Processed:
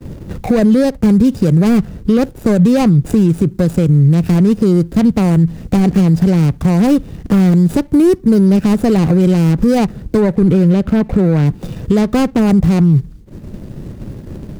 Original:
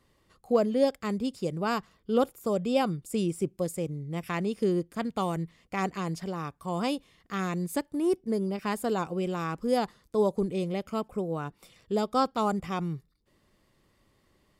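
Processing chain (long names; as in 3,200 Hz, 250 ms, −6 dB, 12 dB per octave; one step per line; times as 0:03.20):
running median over 41 samples
low-shelf EQ 150 Hz −3.5 dB
downward compressor 6 to 1, threshold −36 dBFS, peak gain reduction 15.5 dB
bass and treble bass +13 dB, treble +5 dB, from 0:10.19 treble −4 dB, from 0:11.45 treble +4 dB
downward expander −56 dBFS
boost into a limiter +32 dB
multiband upward and downward compressor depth 40%
level −3 dB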